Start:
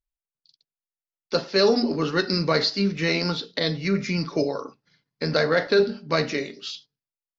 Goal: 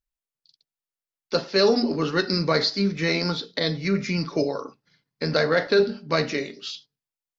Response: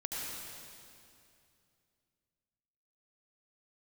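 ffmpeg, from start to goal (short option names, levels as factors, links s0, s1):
-filter_complex "[0:a]asettb=1/sr,asplit=3[s0][s1][s2];[s0]atrim=end=2.294[s3];[s1]atrim=start=2.29:end=3.87,asetpts=PTS-STARTPTS,afade=t=in:d=0.004:c=qsin,afade=t=out:st=1.576:d=0.004:c=qsin,bandreject=f=2800:w=8.9[s4];[s2]atrim=start=3.866[s5];[s3][s4]acrossfade=d=0.004:c1=hsin:c2=qsin[s6];[s6][s5]acrossfade=d=0.004:c1=qsin:c2=hsin"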